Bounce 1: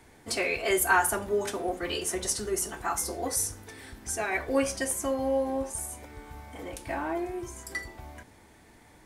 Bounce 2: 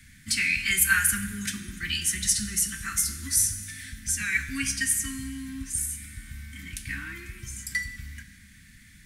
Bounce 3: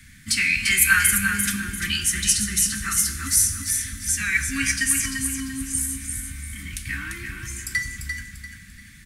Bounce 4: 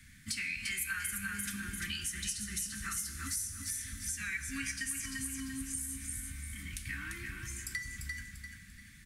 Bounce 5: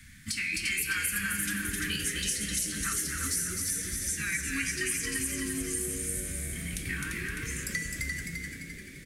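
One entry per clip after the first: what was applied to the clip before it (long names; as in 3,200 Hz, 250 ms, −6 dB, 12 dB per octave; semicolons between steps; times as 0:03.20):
elliptic band-stop filter 210–1,700 Hz, stop band 70 dB; convolution reverb RT60 1.5 s, pre-delay 8 ms, DRR 10 dB; level +6.5 dB
parametric band 1,200 Hz +4 dB 0.28 octaves; repeating echo 344 ms, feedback 33%, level −6 dB; level +4 dB
downward compressor 4 to 1, threshold −27 dBFS, peak gain reduction 13 dB; level −8.5 dB
on a send: echo with shifted repeats 259 ms, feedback 41%, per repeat +100 Hz, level −4 dB; on the sum: every ending faded ahead of time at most 150 dB per second; level +5 dB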